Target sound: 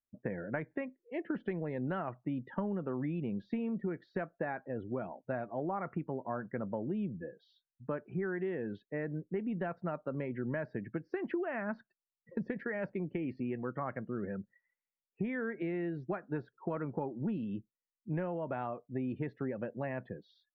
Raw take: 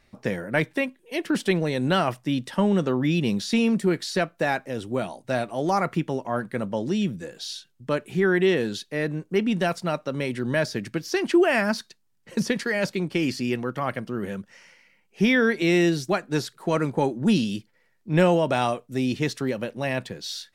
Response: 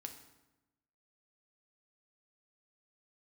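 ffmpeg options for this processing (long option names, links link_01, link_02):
-af "afftdn=noise_reduction=33:noise_floor=-39,acompressor=threshold=-25dB:ratio=16,lowpass=frequency=1900:width=0.5412,lowpass=frequency=1900:width=1.3066,volume=-6.5dB"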